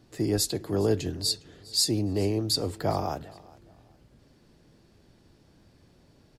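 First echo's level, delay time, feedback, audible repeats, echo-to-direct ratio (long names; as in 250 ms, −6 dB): −22.0 dB, 408 ms, 28%, 2, −21.5 dB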